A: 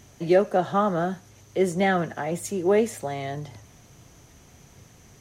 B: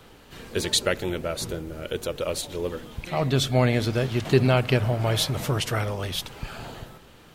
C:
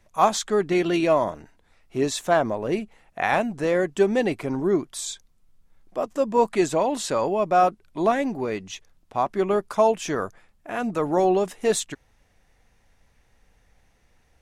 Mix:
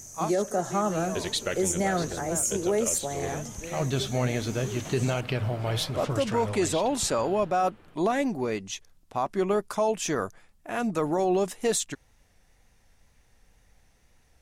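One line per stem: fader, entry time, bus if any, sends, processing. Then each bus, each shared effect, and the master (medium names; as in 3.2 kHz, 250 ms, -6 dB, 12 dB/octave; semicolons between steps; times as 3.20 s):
-3.0 dB, 0.00 s, no send, resonant high shelf 4.8 kHz +12.5 dB, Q 3
-0.5 dB, 0.60 s, no send, treble shelf 11 kHz -5 dB; level-controlled noise filter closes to 2.2 kHz, open at -20.5 dBFS; flange 1.3 Hz, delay 3 ms, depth 9.9 ms, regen +71%
-2.0 dB, 0.00 s, no send, tone controls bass +2 dB, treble +6 dB; vibrato 2 Hz 34 cents; auto duck -16 dB, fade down 0.35 s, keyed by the first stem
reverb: none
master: peak limiter -16.5 dBFS, peak gain reduction 10.5 dB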